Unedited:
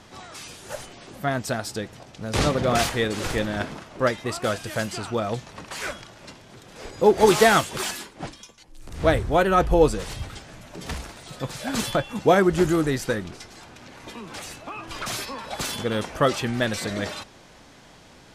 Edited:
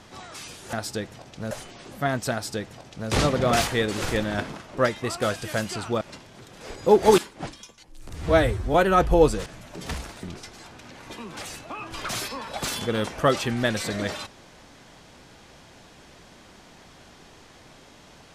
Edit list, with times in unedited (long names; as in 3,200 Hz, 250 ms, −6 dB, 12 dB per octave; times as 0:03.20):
0:01.54–0:02.32: duplicate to 0:00.73
0:05.23–0:06.16: remove
0:07.33–0:07.98: remove
0:08.94–0:09.34: time-stretch 1.5×
0:10.06–0:10.46: remove
0:11.23–0:13.20: remove